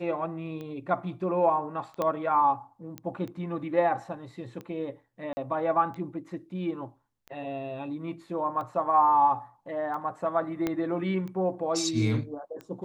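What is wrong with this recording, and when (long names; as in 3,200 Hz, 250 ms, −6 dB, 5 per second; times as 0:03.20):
scratch tick 45 rpm −28 dBFS
0:02.02: click −16 dBFS
0:02.98: click −21 dBFS
0:05.33–0:05.37: drop-out 40 ms
0:10.67: click −15 dBFS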